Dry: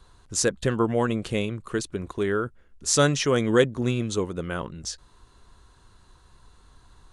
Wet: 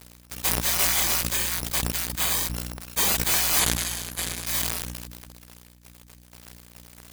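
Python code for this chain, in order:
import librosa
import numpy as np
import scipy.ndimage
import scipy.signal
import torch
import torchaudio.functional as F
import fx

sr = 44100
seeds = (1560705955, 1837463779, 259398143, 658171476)

p1 = fx.bit_reversed(x, sr, seeds[0], block=256)
p2 = fx.steep_lowpass(p1, sr, hz=9100.0, slope=36, at=(3.59, 4.47))
p3 = fx.spec_gate(p2, sr, threshold_db=-30, keep='weak')
p4 = fx.add_hum(p3, sr, base_hz=60, snr_db=11)
p5 = fx.fuzz(p4, sr, gain_db=44.0, gate_db=-53.0)
p6 = p4 + (p5 * librosa.db_to_amplitude(-6.0))
y = fx.sustainer(p6, sr, db_per_s=32.0)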